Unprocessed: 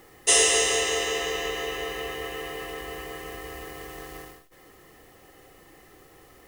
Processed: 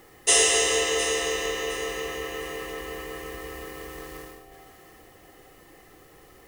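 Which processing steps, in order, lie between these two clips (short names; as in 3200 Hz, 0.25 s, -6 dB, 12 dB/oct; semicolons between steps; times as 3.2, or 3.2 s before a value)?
echo with dull and thin repeats by turns 0.355 s, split 960 Hz, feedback 56%, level -9 dB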